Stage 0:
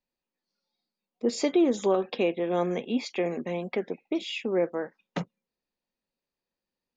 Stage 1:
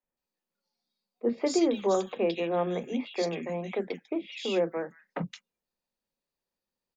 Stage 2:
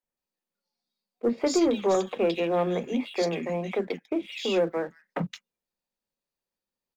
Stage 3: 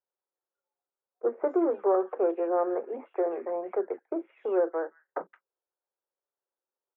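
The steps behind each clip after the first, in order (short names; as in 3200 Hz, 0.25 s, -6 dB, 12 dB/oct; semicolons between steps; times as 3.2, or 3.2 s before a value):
three bands offset in time mids, lows, highs 30/170 ms, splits 280/2300 Hz
sample leveller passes 1
elliptic band-pass 360–1500 Hz, stop band 50 dB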